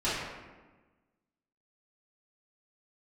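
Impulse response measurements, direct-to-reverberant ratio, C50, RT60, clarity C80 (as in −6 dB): −13.0 dB, −1.0 dB, 1.3 s, 2.0 dB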